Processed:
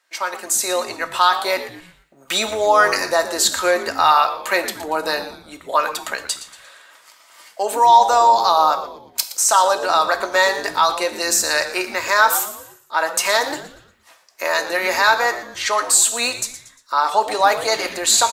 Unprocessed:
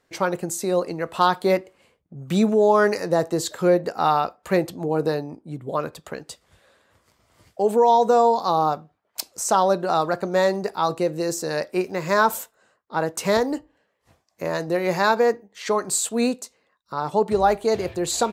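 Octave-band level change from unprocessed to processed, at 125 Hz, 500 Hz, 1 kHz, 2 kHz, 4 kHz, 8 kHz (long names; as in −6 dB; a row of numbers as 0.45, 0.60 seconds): below −10 dB, −1.0 dB, +6.0 dB, +10.0 dB, +12.0 dB, +11.5 dB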